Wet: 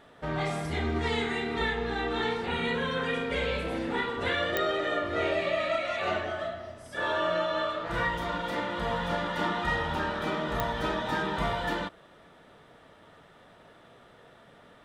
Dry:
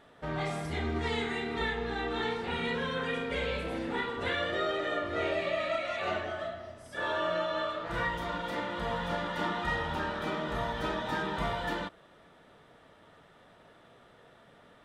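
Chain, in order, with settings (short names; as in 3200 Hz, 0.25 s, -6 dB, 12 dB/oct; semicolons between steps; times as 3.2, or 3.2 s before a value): 2.46–2.91 notch 5300 Hz, Q 5.4; pops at 4.57/10.6, -15 dBFS; gain +3 dB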